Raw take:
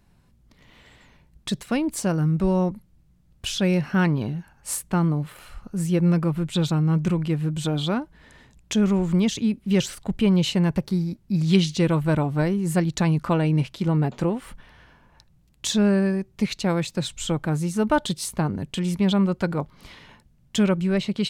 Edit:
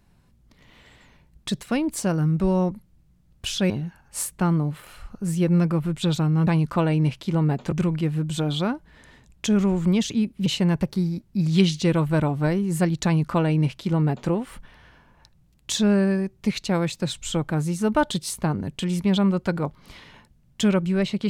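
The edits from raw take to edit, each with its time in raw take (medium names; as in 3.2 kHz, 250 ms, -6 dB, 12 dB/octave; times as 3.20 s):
3.70–4.22 s: delete
9.73–10.41 s: delete
13.00–14.25 s: copy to 6.99 s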